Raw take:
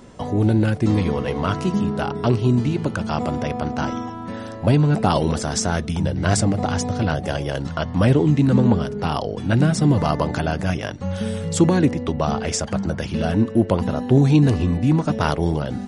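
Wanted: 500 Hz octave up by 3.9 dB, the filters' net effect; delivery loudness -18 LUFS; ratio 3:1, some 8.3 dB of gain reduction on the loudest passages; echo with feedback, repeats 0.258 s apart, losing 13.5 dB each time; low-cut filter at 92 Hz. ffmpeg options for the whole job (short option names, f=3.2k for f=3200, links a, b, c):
-af "highpass=92,equalizer=f=500:t=o:g=5,acompressor=threshold=-21dB:ratio=3,aecho=1:1:258|516:0.211|0.0444,volume=6.5dB"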